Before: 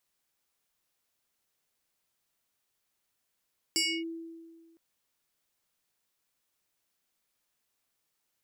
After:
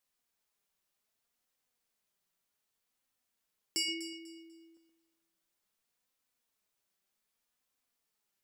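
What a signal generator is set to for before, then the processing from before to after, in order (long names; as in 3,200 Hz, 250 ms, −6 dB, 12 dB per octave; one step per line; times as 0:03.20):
two-operator FM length 1.01 s, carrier 330 Hz, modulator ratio 7.72, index 3.4, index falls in 0.28 s linear, decay 1.69 s, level −23.5 dB
flanger 0.65 Hz, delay 3.7 ms, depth 1.6 ms, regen +53%
delay that swaps between a low-pass and a high-pass 123 ms, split 1,400 Hz, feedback 51%, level −7 dB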